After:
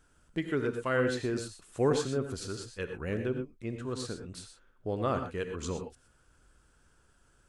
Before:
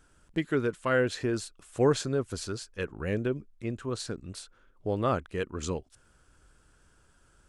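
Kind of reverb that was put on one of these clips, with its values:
reverb whose tail is shaped and stops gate 140 ms rising, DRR 6 dB
level −3.5 dB

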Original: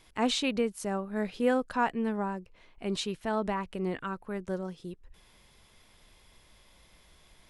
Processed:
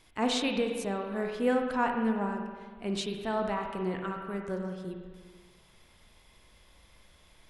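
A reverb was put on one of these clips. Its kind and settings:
spring reverb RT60 1.6 s, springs 40/54 ms, chirp 65 ms, DRR 3 dB
level −1.5 dB

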